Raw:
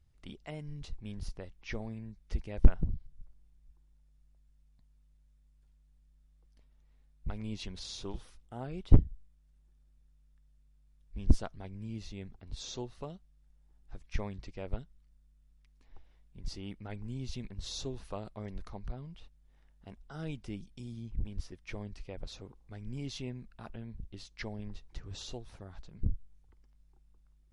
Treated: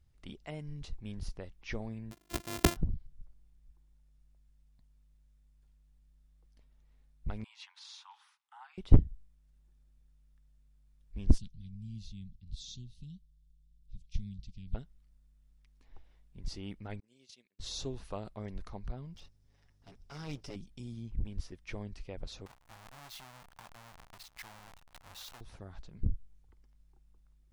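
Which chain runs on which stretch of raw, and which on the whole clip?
2.11–2.77 s: sorted samples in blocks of 128 samples + high-pass 92 Hz + treble shelf 3.2 kHz +9 dB
7.44–8.78 s: steep high-pass 820 Hz 96 dB/octave + treble shelf 3.6 kHz -12 dB
11.38–14.75 s: Chebyshev band-stop 190–3400 Hz, order 3 + treble shelf 3.8 kHz -5.5 dB
17.00–17.60 s: expander -32 dBFS + high-pass 580 Hz + peaking EQ 970 Hz -12.5 dB 1.7 oct
19.15–20.56 s: comb filter that takes the minimum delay 7.1 ms + peaking EQ 5.3 kHz +11 dB 0.42 oct
22.46–25.41 s: square wave that keeps the level + compression, threshold -44 dBFS + resonant low shelf 570 Hz -11.5 dB, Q 1.5
whole clip: none

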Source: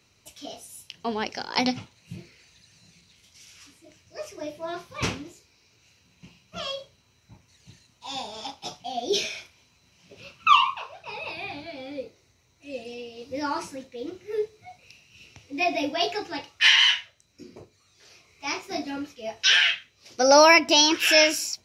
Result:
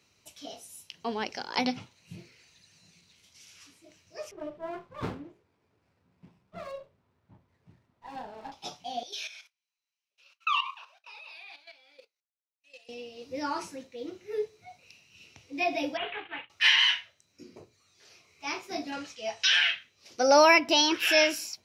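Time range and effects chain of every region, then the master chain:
4.31–8.52 s: low-pass 1.5 kHz + sliding maximum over 9 samples
9.03–12.89 s: high-pass 1.2 kHz + level held to a coarse grid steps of 11 dB + expander -53 dBFS
15.97–16.50 s: CVSD coder 16 kbps + expander -40 dBFS + tilt shelf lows -10 dB, about 1.3 kHz
18.92–19.59 s: FFT filter 180 Hz 0 dB, 330 Hz -6 dB, 570 Hz +3 dB, 8.2 kHz +9 dB, 13 kHz -7 dB + compression 3:1, threshold -16 dBFS
whole clip: bass shelf 100 Hz -6 dB; hum notches 60/120 Hz; dynamic bell 7 kHz, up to -6 dB, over -39 dBFS, Q 1.2; trim -3.5 dB

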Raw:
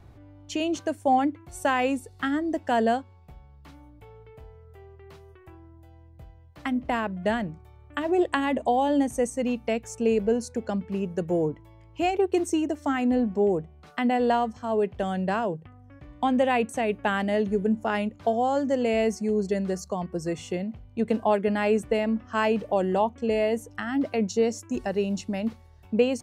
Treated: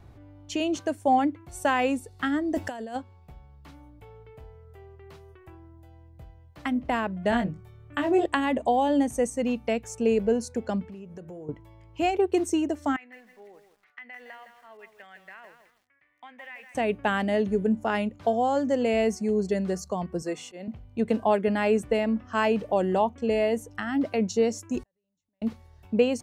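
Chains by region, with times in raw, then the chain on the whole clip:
2.55–2.96 s: treble shelf 5.9 kHz +9.5 dB + compressor with a negative ratio -30 dBFS, ratio -0.5
7.30–8.26 s: peaking EQ 95 Hz +13.5 dB 0.47 oct + doubling 21 ms -3 dB
10.85–11.49 s: de-hum 117.1 Hz, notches 21 + compression 5:1, threshold -40 dBFS
12.96–16.75 s: band-pass filter 2 kHz, Q 5.1 + compression 4:1, threshold -40 dBFS + bit-crushed delay 162 ms, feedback 35%, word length 10-bit, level -8 dB
20.22–20.68 s: high-pass 290 Hz + slow attack 145 ms
24.83–25.42 s: rippled EQ curve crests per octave 1.1, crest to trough 8 dB + compression 12:1, threshold -38 dBFS + inverted gate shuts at -42 dBFS, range -40 dB
whole clip: none

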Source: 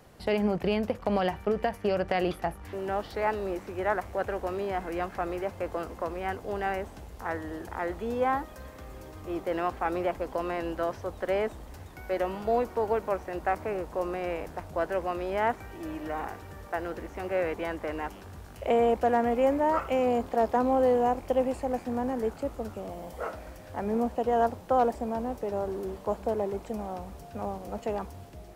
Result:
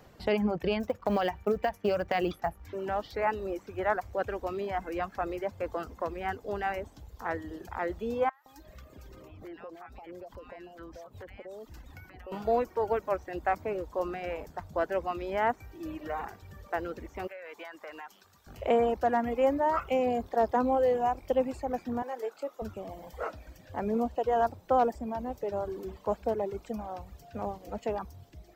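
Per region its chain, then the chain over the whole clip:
0.80–2.66 s: hum notches 50/100/150 Hz + short-mantissa float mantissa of 4-bit
8.29–12.32 s: compression 4:1, threshold -41 dBFS + bands offset in time highs, lows 170 ms, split 940 Hz
17.27–18.47 s: high-pass 1.1 kHz 6 dB/octave + compression 12:1, threshold -36 dBFS
22.02–22.62 s: high-pass 450 Hz + doubling 24 ms -12.5 dB
whole clip: reverb removal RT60 1.5 s; peaking EQ 9.8 kHz -14.5 dB 0.27 oct

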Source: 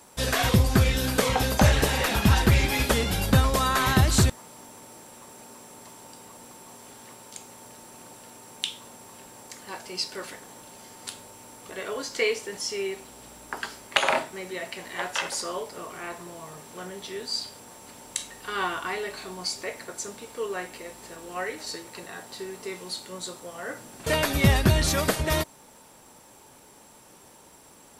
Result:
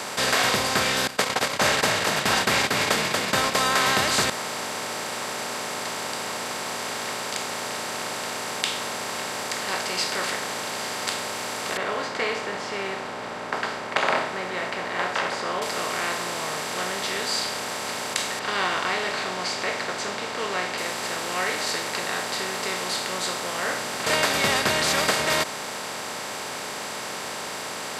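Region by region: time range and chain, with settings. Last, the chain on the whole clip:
1.07–3.55 s: gate -23 dBFS, range -34 dB + frequency-shifting echo 234 ms, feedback 49%, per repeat +41 Hz, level -6 dB
11.77–15.62 s: low-pass 1.5 kHz + tape noise reduction on one side only decoder only
18.39–20.78 s: distance through air 150 m + tape noise reduction on one side only decoder only
whole clip: spectral levelling over time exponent 0.4; frequency weighting A; trim -2.5 dB

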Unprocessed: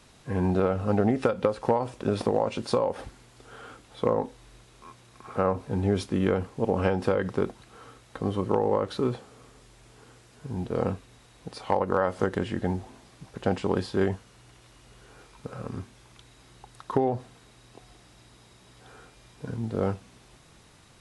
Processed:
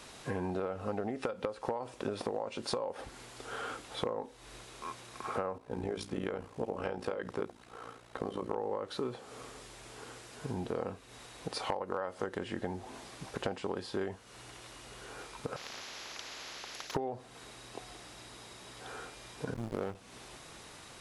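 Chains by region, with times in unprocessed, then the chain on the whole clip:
5.58–8.58 s: hum notches 50/100/150/200/250/300/350 Hz + AM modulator 58 Hz, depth 60% + tape noise reduction on one side only decoder only
15.56–16.95 s: hard clipper -32 dBFS + boxcar filter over 5 samples + spectrum-flattening compressor 10:1
19.54–19.95 s: treble shelf 3.8 kHz +8.5 dB + hysteresis with a dead band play -27.5 dBFS
whole clip: tone controls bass -9 dB, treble 0 dB; compression 6:1, threshold -40 dBFS; trim +6.5 dB

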